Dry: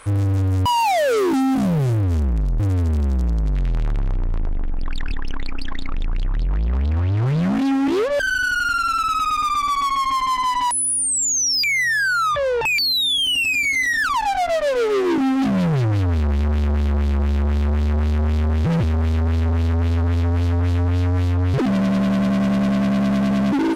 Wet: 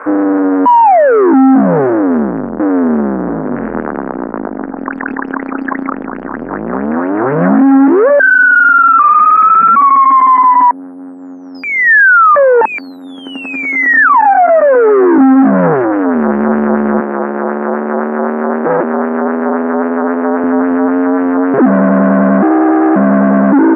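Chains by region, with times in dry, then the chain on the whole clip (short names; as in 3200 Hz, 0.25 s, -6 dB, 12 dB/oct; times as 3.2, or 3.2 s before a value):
3.22–3.81 LPF 3500 Hz 24 dB/oct + doubler 49 ms -6 dB
8.99–9.76 CVSD 64 kbps + inverted band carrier 2500 Hz
10.42–11.55 short-mantissa float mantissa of 6-bit + air absorption 430 m
17–20.44 HPF 330 Hz + air absorption 310 m
22.42–22.96 HPF 210 Hz 24 dB/oct + frequency shift +120 Hz
whole clip: elliptic band-pass 230–1600 Hz, stop band 40 dB; maximiser +20.5 dB; gain -1 dB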